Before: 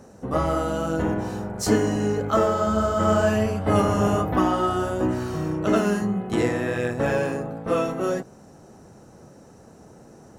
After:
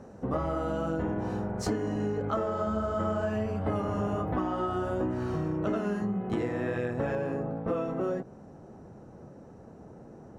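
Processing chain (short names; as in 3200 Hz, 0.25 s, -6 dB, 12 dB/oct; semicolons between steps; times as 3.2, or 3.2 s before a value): LPF 1800 Hz 6 dB/oct, from 7.15 s 1000 Hz; compressor, threshold -27 dBFS, peak gain reduction 12.5 dB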